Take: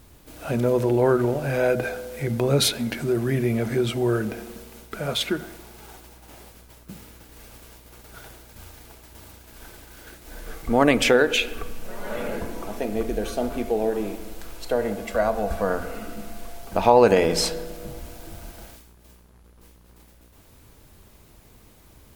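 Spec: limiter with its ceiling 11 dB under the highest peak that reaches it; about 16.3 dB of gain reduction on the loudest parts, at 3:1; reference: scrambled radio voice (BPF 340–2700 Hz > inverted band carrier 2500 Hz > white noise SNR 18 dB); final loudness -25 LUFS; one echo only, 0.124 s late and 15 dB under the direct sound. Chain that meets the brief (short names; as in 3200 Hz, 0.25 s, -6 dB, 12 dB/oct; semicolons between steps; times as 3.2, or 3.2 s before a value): compressor 3:1, threshold -33 dBFS; limiter -27 dBFS; BPF 340–2700 Hz; echo 0.124 s -15 dB; inverted band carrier 2500 Hz; white noise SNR 18 dB; gain +14 dB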